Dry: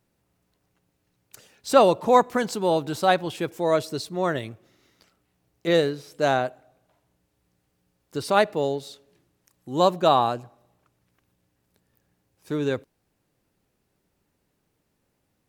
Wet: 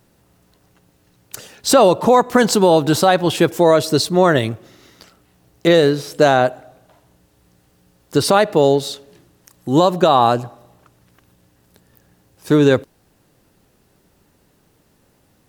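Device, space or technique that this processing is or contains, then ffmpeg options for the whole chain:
mastering chain: -af "equalizer=f=2.3k:t=o:w=0.31:g=-3.5,acompressor=threshold=-23dB:ratio=2.5,alimiter=level_in=16dB:limit=-1dB:release=50:level=0:latency=1,volume=-1dB"

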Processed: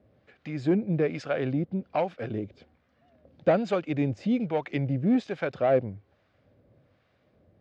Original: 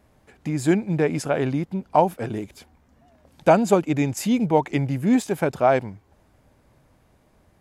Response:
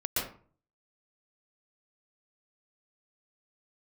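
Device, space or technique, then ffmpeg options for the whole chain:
guitar amplifier with harmonic tremolo: -filter_complex "[0:a]acrossover=split=780[a][b];[a]aeval=exprs='val(0)*(1-0.7/2+0.7/2*cos(2*PI*1.2*n/s))':c=same[c];[b]aeval=exprs='val(0)*(1-0.7/2-0.7/2*cos(2*PI*1.2*n/s))':c=same[d];[c][d]amix=inputs=2:normalize=0,asoftclip=type=tanh:threshold=-14dB,highpass=86,equalizer=f=100:t=q:w=4:g=5,equalizer=f=530:t=q:w=4:g=6,equalizer=f=920:t=q:w=4:g=-10,lowpass=f=4.4k:w=0.5412,lowpass=f=4.4k:w=1.3066,volume=-1.5dB"

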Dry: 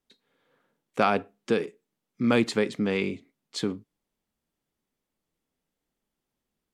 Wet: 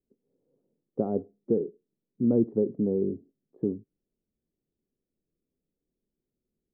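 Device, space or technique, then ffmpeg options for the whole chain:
under water: -af "lowpass=f=500:w=0.5412,lowpass=f=500:w=1.3066,equalizer=f=380:t=o:w=0.21:g=4.5"

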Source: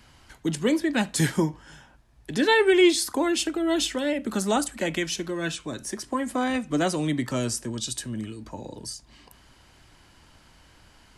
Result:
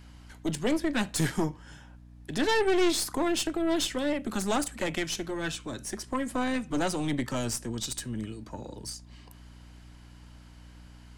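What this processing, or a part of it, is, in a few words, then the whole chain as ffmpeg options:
valve amplifier with mains hum: -af "aeval=exprs='(tanh(11.2*val(0)+0.6)-tanh(0.6))/11.2':c=same,aeval=exprs='val(0)+0.00355*(sin(2*PI*60*n/s)+sin(2*PI*2*60*n/s)/2+sin(2*PI*3*60*n/s)/3+sin(2*PI*4*60*n/s)/4+sin(2*PI*5*60*n/s)/5)':c=same"

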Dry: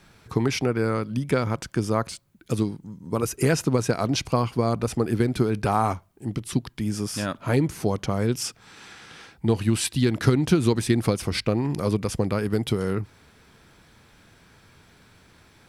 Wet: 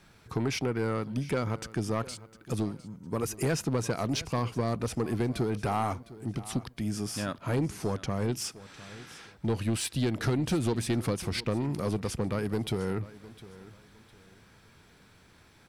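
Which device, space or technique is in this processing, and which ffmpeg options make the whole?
saturation between pre-emphasis and de-emphasis: -filter_complex "[0:a]asettb=1/sr,asplit=3[a][b][c];[a]atrim=end=7.644[d];[b]atrim=start=7.64:end=8.35,asetpts=PTS-STARTPTS,afade=t=in:d=0.004:c=qsin,afade=t=out:st=0.706:d=0.004:c=qsin,lowpass=12k[e];[c]atrim=start=8.346[f];[d][e]acrossfade=d=0.004:c1=hsin:c2=qsin[g];[g][f]acrossfade=d=0.004:c1=qsin:c2=hsin,highshelf=f=6.2k:g=8.5,asoftclip=type=tanh:threshold=-17.5dB,highshelf=f=6.2k:g=-8.5,aecho=1:1:706|1412|2118:0.126|0.0365|0.0106,volume=-4dB"

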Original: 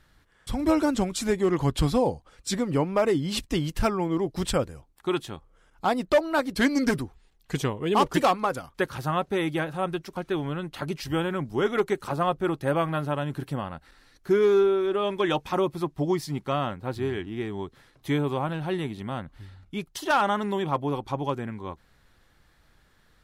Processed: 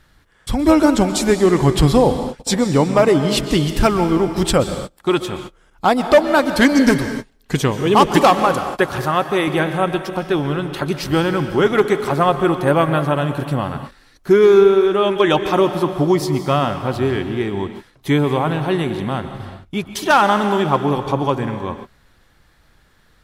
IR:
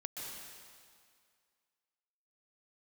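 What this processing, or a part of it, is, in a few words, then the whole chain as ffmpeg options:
keyed gated reverb: -filter_complex "[0:a]asplit=3[a][b][c];[1:a]atrim=start_sample=2205[d];[b][d]afir=irnorm=-1:irlink=0[e];[c]apad=whole_len=1024478[f];[e][f]sidechaingate=range=-33dB:threshold=-48dB:ratio=16:detection=peak,volume=-3dB[g];[a][g]amix=inputs=2:normalize=0,asettb=1/sr,asplit=3[h][i][j];[h]atrim=end=9.054[k];[i]atrim=start=9.05:end=9.48,asetpts=PTS-STARTPTS,afade=t=in:d=0.004:c=qsin,afade=t=out:st=0.426:d=0.004:c=qsin,lowshelf=f=170:g=-10.5[l];[j]atrim=start=9.476[m];[k][l]acrossfade=d=0.004:c1=hsin:c2=qsin[n];[n][m]acrossfade=d=0.004:c1=qsin:c2=hsin,volume=6.5dB"

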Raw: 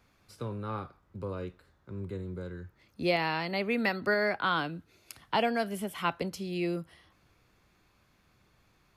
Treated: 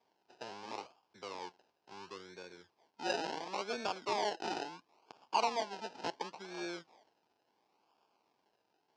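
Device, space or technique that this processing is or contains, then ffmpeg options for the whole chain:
circuit-bent sampling toy: -af "acrusher=samples=31:mix=1:aa=0.000001:lfo=1:lforange=18.6:lforate=0.72,highpass=530,equalizer=f=560:t=q:w=4:g=-6,equalizer=f=890:t=q:w=4:g=5,equalizer=f=1.3k:t=q:w=4:g=-5,equalizer=f=1.9k:t=q:w=4:g=-9,equalizer=f=3.6k:t=q:w=4:g=-4,equalizer=f=5.1k:t=q:w=4:g=4,lowpass=f=5.5k:w=0.5412,lowpass=f=5.5k:w=1.3066,volume=-2dB"

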